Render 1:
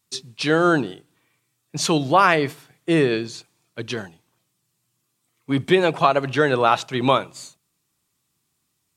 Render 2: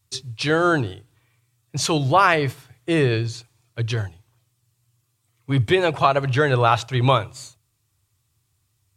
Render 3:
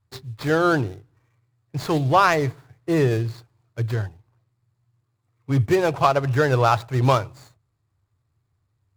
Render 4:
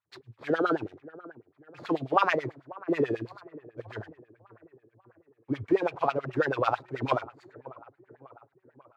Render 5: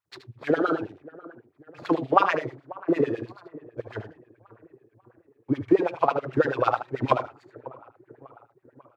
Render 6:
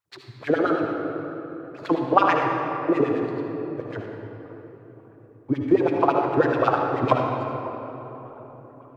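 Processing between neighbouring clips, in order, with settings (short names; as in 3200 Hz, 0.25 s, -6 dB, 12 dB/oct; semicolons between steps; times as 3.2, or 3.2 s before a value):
resonant low shelf 140 Hz +10.5 dB, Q 3
median filter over 15 samples
dark delay 0.568 s, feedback 52%, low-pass 1500 Hz, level -19 dB; LFO band-pass sine 9.2 Hz 250–2900 Hz
transient shaper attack +6 dB, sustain -1 dB; on a send: echo 76 ms -10.5 dB
reverb RT60 3.5 s, pre-delay 52 ms, DRR 2 dB; gain +1 dB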